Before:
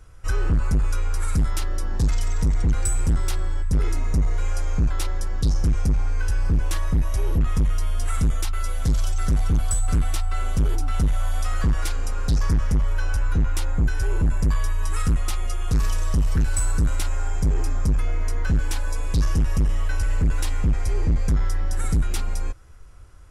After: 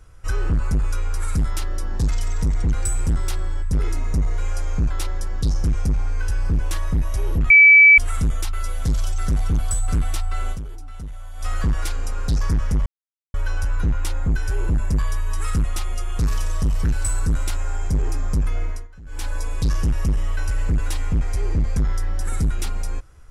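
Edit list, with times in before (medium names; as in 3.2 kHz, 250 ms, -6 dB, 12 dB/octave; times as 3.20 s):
7.50–7.98 s: bleep 2.3 kHz -6 dBFS
10.52–11.45 s: dip -13 dB, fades 0.36 s exponential
12.86 s: insert silence 0.48 s
18.16–18.81 s: dip -21.5 dB, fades 0.24 s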